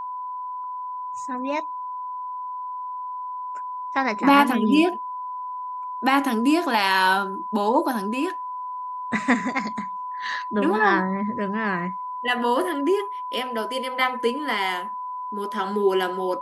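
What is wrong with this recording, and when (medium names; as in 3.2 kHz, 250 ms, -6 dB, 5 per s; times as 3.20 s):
whine 1 kHz -29 dBFS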